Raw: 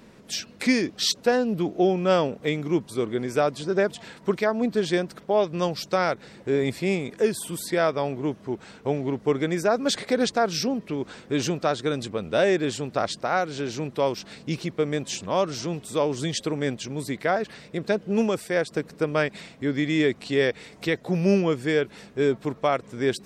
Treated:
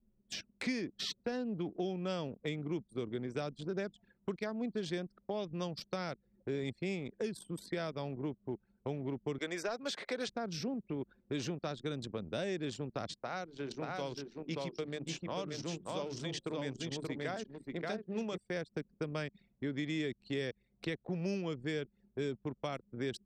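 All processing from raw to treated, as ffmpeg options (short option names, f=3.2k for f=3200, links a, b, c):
-filter_complex "[0:a]asettb=1/sr,asplit=3[a][b][c];[a]atrim=end=9.384[d];[b]atrim=start=9.38:end=10.28,asetpts=PTS-STARTPTS,afade=t=in:d=0.004:c=qsin,afade=t=out:st=0.896:d=0.004:c=qsin,highpass=560,bandreject=f=760:w=21,acontrast=65[e];[c]atrim=start=10.276[f];[d][e]acrossfade=d=0.004:c1=hsin:c2=qsin[g];[g][f]acrossfade=d=0.004:c1=qsin:c2=hsin,asettb=1/sr,asplit=3[h][i][j];[h]atrim=end=13.134[k];[i]atrim=start=13.13:end=18.38,asetpts=PTS-STARTPTS,afade=t=in:d=0.004:c=qsin,afade=t=out:st=5.246:d=0.004:c=qsin,lowshelf=f=270:g=-5,bandreject=f=50:t=h:w=6,bandreject=f=100:t=h:w=6,bandreject=f=150:t=h:w=6,bandreject=f=200:t=h:w=6,bandreject=f=250:t=h:w=6,bandreject=f=300:t=h:w=6,bandreject=f=350:t=h:w=6,bandreject=f=400:t=h:w=6,aecho=1:1:580:0.668,atrim=end_sample=231525[l];[j]atrim=start=18.376[m];[k][l]acrossfade=d=0.004:c1=hsin:c2=qsin[n];[n][m]acrossfade=d=0.004:c1=qsin:c2=hsin,anlmdn=15.8,acrossover=split=250|3000|6100[o][p][q][r];[o]acompressor=threshold=-34dB:ratio=4[s];[p]acompressor=threshold=-34dB:ratio=4[t];[q]acompressor=threshold=-41dB:ratio=4[u];[r]acompressor=threshold=-54dB:ratio=4[v];[s][t][u][v]amix=inputs=4:normalize=0,volume=-6dB"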